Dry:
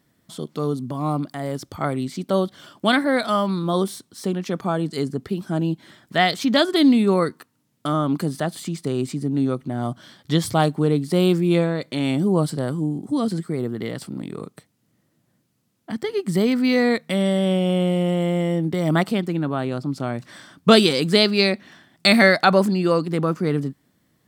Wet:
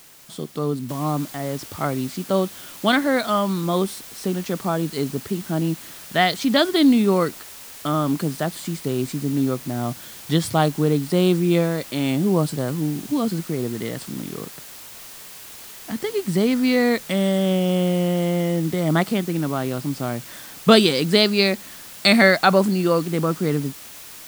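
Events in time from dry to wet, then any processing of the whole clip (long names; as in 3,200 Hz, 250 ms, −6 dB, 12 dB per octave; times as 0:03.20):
0:00.89: noise floor change −48 dB −40 dB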